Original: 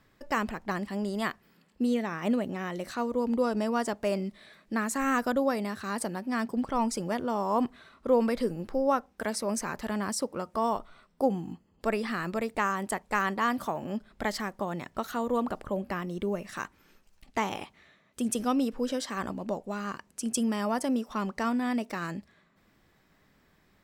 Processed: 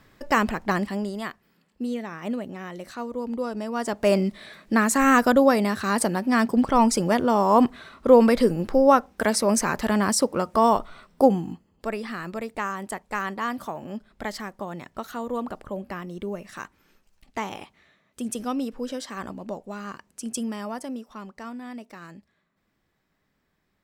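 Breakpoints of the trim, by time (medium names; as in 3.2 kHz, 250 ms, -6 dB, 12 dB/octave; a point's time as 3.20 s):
0.81 s +8 dB
1.24 s -2 dB
3.69 s -2 dB
4.10 s +9.5 dB
11.22 s +9.5 dB
11.89 s -1 dB
20.36 s -1 dB
21.29 s -8.5 dB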